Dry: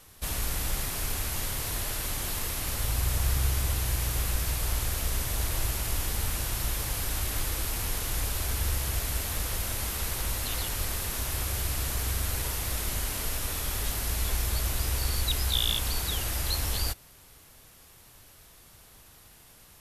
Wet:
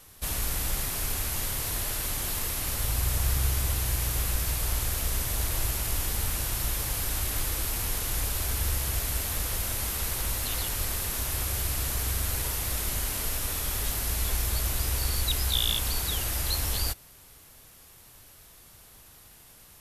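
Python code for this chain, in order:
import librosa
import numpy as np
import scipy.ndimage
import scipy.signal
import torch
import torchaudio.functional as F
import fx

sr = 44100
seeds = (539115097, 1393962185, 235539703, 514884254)

y = fx.high_shelf(x, sr, hz=8900.0, db=4.0)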